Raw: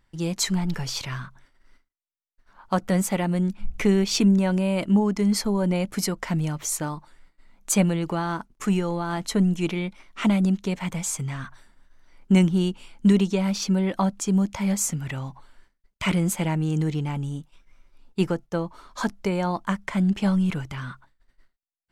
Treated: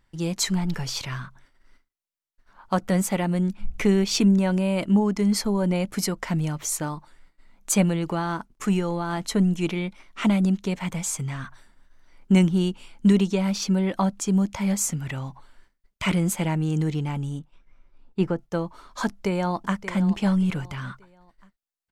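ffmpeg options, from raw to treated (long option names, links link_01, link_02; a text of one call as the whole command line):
ffmpeg -i in.wav -filter_complex "[0:a]asettb=1/sr,asplit=3[link_01][link_02][link_03];[link_01]atrim=end=17.394[link_04];[link_02]atrim=start=17.39:end=18.39,asetpts=PTS-STARTPTS,afade=type=in:duration=0.004:curve=qsin,afade=type=out:start_time=0.996:duration=0.004:curve=qsin,lowpass=frequency=1800:poles=1[link_05];[link_03]atrim=start=18.386[link_06];[link_04][link_05]acrossfade=duration=0.004:curve1=hsin:curve2=qsin[link_07];[link_07][link_06]acrossfade=duration=0.004:curve1=qsin:curve2=hsin,asplit=2[link_08][link_09];[link_09]afade=type=in:start_time=19.06:duration=0.01,afade=type=out:start_time=19.77:duration=0.01,aecho=0:1:580|1160|1740:0.223872|0.0783552|0.0274243[link_10];[link_08][link_10]amix=inputs=2:normalize=0" out.wav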